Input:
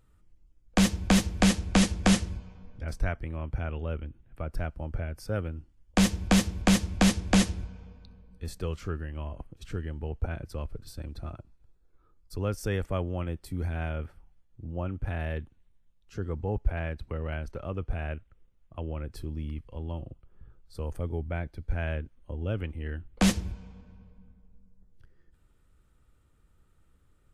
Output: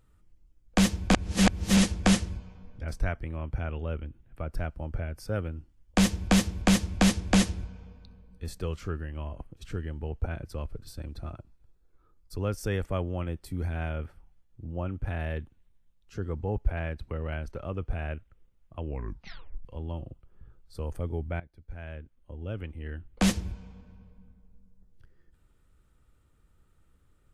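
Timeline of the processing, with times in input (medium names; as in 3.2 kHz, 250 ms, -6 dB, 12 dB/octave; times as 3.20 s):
1.13–1.77 s: reverse
18.84 s: tape stop 0.81 s
21.40–23.53 s: fade in, from -17 dB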